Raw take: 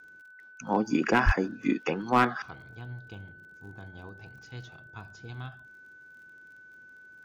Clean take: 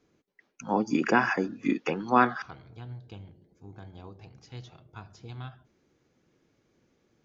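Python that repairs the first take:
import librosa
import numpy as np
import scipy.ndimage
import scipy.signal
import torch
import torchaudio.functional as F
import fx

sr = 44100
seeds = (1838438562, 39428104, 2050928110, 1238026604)

y = fx.fix_declip(x, sr, threshold_db=-13.5)
y = fx.fix_declick_ar(y, sr, threshold=6.5)
y = fx.notch(y, sr, hz=1500.0, q=30.0)
y = fx.highpass(y, sr, hz=140.0, slope=24, at=(1.25, 1.37), fade=0.02)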